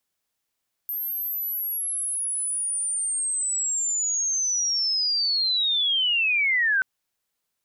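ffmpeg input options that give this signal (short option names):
-f lavfi -i "aevalsrc='pow(10,(-26.5+8*t/5.93)/20)*sin(2*PI*(13000*t-11500*t*t/(2*5.93)))':d=5.93:s=44100"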